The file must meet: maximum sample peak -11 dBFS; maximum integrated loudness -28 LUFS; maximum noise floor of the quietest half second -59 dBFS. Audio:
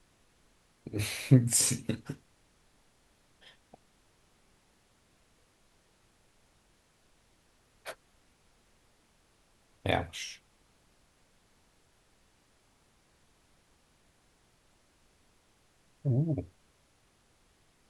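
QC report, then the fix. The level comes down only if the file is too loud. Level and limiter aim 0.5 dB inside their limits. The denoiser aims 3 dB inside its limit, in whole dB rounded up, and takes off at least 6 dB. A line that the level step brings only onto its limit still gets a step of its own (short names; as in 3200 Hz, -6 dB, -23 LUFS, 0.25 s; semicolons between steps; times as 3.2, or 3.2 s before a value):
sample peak -7.5 dBFS: fail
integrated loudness -30.5 LUFS: OK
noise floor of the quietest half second -68 dBFS: OK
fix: limiter -11.5 dBFS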